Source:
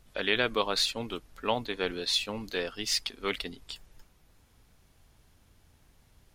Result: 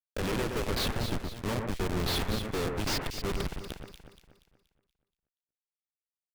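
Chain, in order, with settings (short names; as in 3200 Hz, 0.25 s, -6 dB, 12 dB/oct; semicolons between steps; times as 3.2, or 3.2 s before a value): median filter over 3 samples; HPF 70 Hz 24 dB/oct; low shelf 290 Hz +4.5 dB; in parallel at +1 dB: limiter -18 dBFS, peak gain reduction 8 dB; on the sum: rotary speaker horn 7 Hz, later 1.2 Hz, at 0.95; requantised 8-bit, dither none; Schmitt trigger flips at -25.5 dBFS; on a send: echo with dull and thin repeats by turns 0.119 s, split 2200 Hz, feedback 64%, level -4 dB; on the sum: Doppler distortion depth 0.19 ms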